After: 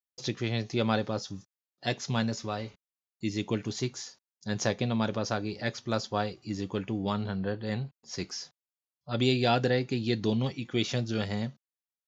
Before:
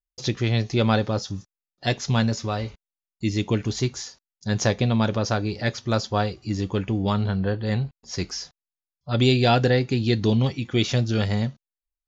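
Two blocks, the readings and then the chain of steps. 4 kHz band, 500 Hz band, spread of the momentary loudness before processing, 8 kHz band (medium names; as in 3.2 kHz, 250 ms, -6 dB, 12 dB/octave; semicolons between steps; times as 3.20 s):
-6.0 dB, -6.0 dB, 10 LU, no reading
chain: high-pass 130 Hz 12 dB/octave; trim -6 dB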